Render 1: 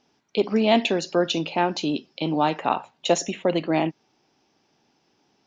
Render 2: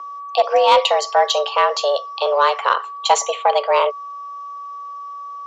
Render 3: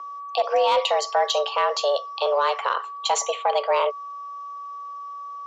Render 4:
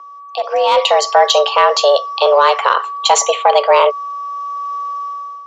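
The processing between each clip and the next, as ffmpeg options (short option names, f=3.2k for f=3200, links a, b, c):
-af "aeval=exprs='val(0)+0.0158*sin(2*PI*860*n/s)':c=same,afreqshift=280,acontrast=71"
-af "alimiter=limit=-9dB:level=0:latency=1:release=40,volume=-3.5dB"
-af "dynaudnorm=f=280:g=5:m=14.5dB"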